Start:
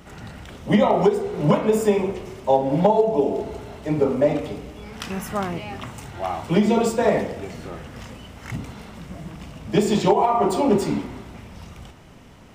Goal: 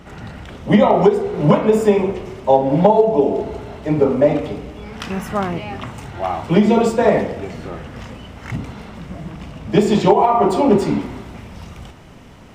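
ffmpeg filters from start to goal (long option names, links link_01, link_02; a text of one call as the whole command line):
ffmpeg -i in.wav -af "asetnsamples=nb_out_samples=441:pad=0,asendcmd='11.01 highshelf g -3.5',highshelf=frequency=5700:gain=-10,volume=5dB" out.wav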